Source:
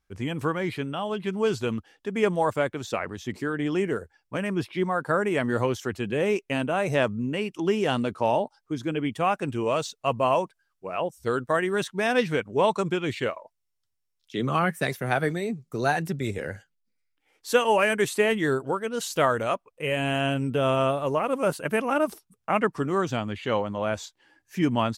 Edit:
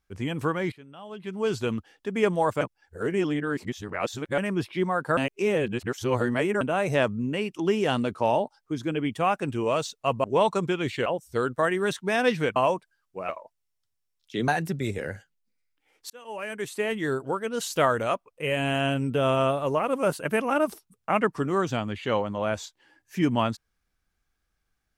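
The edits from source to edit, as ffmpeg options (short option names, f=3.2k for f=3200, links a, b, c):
-filter_complex "[0:a]asplit=12[a][b][c][d][e][f][g][h][i][j][k][l];[a]atrim=end=0.72,asetpts=PTS-STARTPTS,afade=t=out:st=0.716:d=0.004:c=hsin:silence=0.11885[m];[b]atrim=start=0.72:end=2.612,asetpts=PTS-STARTPTS,afade=t=in:d=0.86:c=qua:silence=0.11885[n];[c]atrim=start=2.608:end=4.382,asetpts=PTS-STARTPTS,areverse[o];[d]atrim=start=4.378:end=5.172[p];[e]atrim=start=5.168:end=6.612,asetpts=PTS-STARTPTS,areverse[q];[f]atrim=start=6.608:end=10.242[r];[g]atrim=start=12.468:end=13.292[s];[h]atrim=start=10.968:end=12.472[t];[i]atrim=start=10.238:end=10.972[u];[j]atrim=start=13.288:end=14.482[v];[k]atrim=start=15.878:end=17.5,asetpts=PTS-STARTPTS,afade=t=out:st=1.618:d=0.004:c=hsin[w];[l]atrim=start=17.5,asetpts=PTS-STARTPTS,afade=t=in:d=1.42[x];[m][n]concat=n=2:v=0:a=1[y];[y][o]acrossfade=d=0.004:c1=hsin:c2=hsin[z];[z][p]acrossfade=d=0.004:c1=hsin:c2=hsin[aa];[aa][q]acrossfade=d=0.004:c1=hsin:c2=hsin[ab];[ab][r]acrossfade=d=0.004:c1=hsin:c2=hsin[ac];[ac][s]acrossfade=d=0.004:c1=hsin:c2=hsin[ad];[ad][t]acrossfade=d=0.004:c1=hsin:c2=hsin[ae];[ae][u]acrossfade=d=0.004:c1=hsin:c2=hsin[af];[af][v]acrossfade=d=0.004:c1=hsin:c2=hsin[ag];[w][x]concat=n=2:v=0:a=1[ah];[ag][ah]acrossfade=d=0.004:c1=hsin:c2=hsin"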